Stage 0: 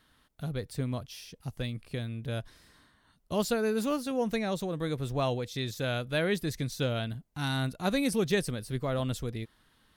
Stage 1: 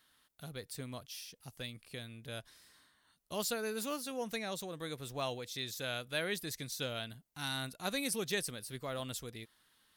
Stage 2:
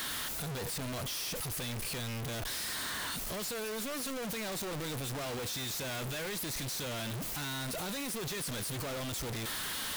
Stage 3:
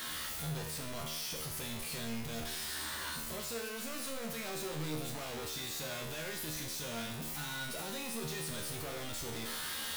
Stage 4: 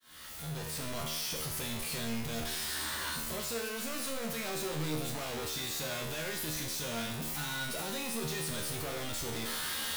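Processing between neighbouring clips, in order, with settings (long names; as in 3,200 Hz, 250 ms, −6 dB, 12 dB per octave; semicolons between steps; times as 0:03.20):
spectral tilt +2.5 dB per octave; level −6.5 dB
sign of each sample alone; level +4 dB
tuned comb filter 77 Hz, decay 0.76 s, harmonics all, mix 90%; level +8.5 dB
fade in at the beginning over 0.86 s; level +3.5 dB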